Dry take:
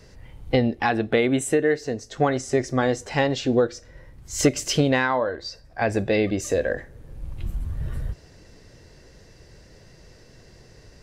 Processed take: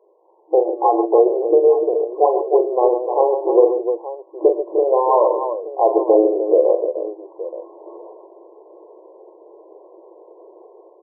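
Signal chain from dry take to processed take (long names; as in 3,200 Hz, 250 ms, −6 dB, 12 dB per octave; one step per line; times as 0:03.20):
brick-wall band-pass 320–1,100 Hz
automatic gain control gain up to 11.5 dB
on a send: multi-tap delay 41/109/112/138/303/876 ms −6.5/−18.5/−20/−10/−8/−14 dB
on the sum: level −1 dB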